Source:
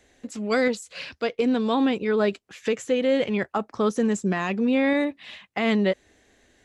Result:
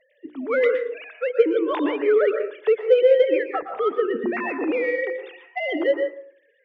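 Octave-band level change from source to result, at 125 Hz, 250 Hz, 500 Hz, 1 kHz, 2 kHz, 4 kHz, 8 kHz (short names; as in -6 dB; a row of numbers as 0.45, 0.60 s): under -20 dB, -5.0 dB, +6.0 dB, -0.5 dB, +1.0 dB, -5.0 dB, under -25 dB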